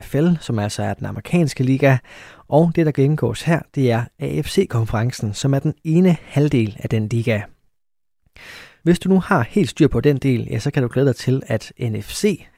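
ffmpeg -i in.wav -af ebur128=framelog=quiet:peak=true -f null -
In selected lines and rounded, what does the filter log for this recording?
Integrated loudness:
  I:         -19.0 LUFS
  Threshold: -29.4 LUFS
Loudness range:
  LRA:         2.5 LU
  Threshold: -39.4 LUFS
  LRA low:   -20.9 LUFS
  LRA high:  -18.4 LUFS
True peak:
  Peak:       -1.9 dBFS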